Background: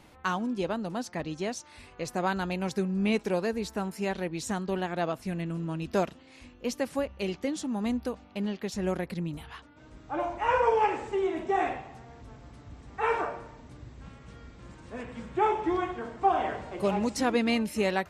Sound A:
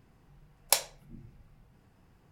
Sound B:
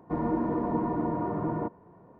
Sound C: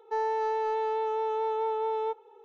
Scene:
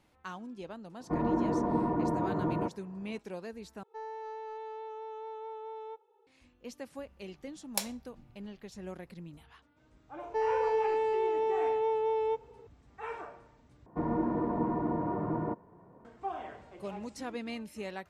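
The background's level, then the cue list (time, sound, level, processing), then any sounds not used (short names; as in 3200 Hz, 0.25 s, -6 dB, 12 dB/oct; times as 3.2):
background -13 dB
1 add B -1 dB
3.83 replace with C -13 dB
7.05 add A -8 dB
10.23 add C -2 dB + comb 1.9 ms
13.86 replace with B -2.5 dB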